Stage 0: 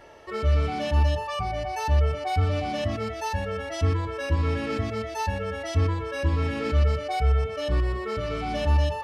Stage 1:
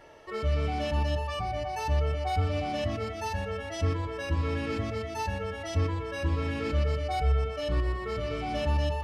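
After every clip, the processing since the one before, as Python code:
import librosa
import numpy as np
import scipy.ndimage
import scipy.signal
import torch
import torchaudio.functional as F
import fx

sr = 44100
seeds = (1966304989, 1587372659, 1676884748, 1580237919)

y = fx.room_shoebox(x, sr, seeds[0], volume_m3=3000.0, walls='mixed', distance_m=0.53)
y = F.gain(torch.from_numpy(y), -3.5).numpy()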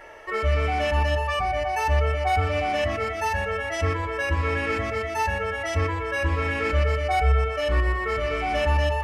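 y = fx.graphic_eq(x, sr, hz=(125, 250, 2000, 4000), db=(-11, -7, 7, -8))
y = F.gain(torch.from_numpy(y), 8.0).numpy()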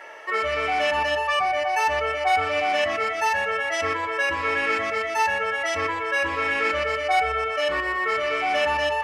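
y = fx.weighting(x, sr, curve='A')
y = F.gain(torch.from_numpy(y), 3.5).numpy()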